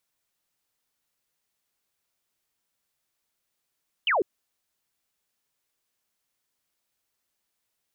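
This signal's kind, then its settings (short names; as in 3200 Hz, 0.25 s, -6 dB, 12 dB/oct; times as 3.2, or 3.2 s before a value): laser zap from 3200 Hz, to 330 Hz, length 0.15 s sine, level -20 dB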